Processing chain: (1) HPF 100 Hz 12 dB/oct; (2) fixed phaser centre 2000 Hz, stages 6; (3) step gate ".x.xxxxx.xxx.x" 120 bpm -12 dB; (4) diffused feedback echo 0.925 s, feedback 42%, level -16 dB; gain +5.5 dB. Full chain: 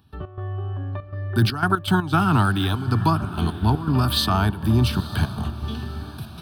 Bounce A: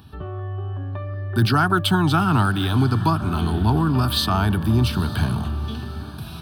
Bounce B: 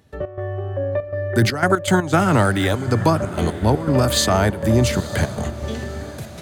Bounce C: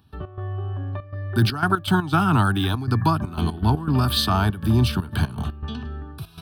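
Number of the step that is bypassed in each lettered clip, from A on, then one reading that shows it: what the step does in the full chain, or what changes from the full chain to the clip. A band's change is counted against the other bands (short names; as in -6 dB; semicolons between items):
3, loudness change +1.5 LU; 2, 8 kHz band +9.5 dB; 4, echo-to-direct -15.0 dB to none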